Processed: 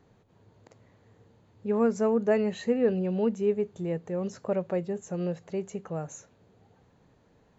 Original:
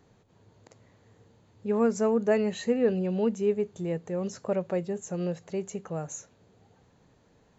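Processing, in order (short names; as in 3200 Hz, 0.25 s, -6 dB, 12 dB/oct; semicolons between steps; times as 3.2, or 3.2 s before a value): high shelf 4900 Hz -8.5 dB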